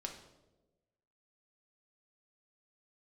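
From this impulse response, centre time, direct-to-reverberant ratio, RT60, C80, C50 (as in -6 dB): 23 ms, 1.5 dB, 1.1 s, 10.0 dB, 7.5 dB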